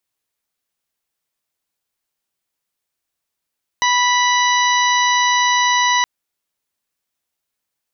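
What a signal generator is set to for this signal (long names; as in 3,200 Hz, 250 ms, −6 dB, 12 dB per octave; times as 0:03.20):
steady harmonic partials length 2.22 s, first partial 984 Hz, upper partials −2.5/−8.5/−7/−17/−8 dB, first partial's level −15.5 dB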